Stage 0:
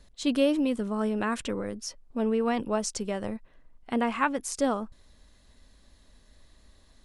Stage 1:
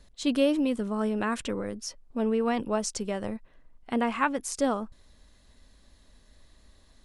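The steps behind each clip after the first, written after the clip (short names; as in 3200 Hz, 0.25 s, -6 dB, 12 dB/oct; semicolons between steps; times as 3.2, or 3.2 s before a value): nothing audible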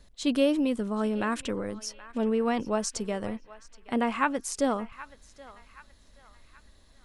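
narrowing echo 0.775 s, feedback 48%, band-pass 1900 Hz, level -15 dB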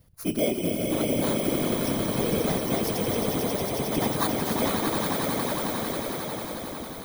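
FFT order left unsorted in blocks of 16 samples; swelling echo 90 ms, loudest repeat 8, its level -6.5 dB; whisperiser; gain -2.5 dB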